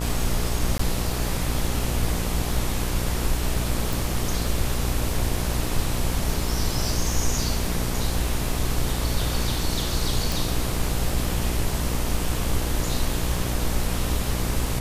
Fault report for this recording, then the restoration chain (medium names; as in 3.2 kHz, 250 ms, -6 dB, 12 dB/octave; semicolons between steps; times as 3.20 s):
buzz 60 Hz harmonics 21 -28 dBFS
crackle 20 per s -31 dBFS
0.78–0.79 s: dropout 14 ms
3.93 s: pop
10.32 s: pop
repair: de-click; de-hum 60 Hz, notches 21; interpolate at 0.78 s, 14 ms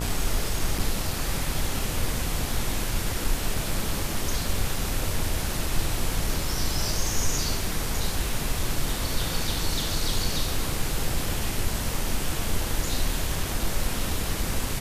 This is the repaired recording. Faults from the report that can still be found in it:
nothing left